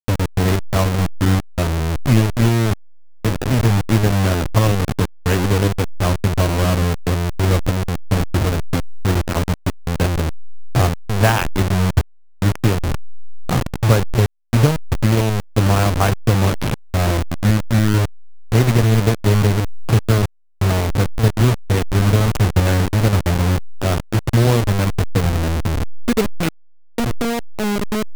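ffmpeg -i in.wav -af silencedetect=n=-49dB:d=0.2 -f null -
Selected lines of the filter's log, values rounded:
silence_start: 14.26
silence_end: 14.53 | silence_duration: 0.27
silence_start: 20.26
silence_end: 20.61 | silence_duration: 0.36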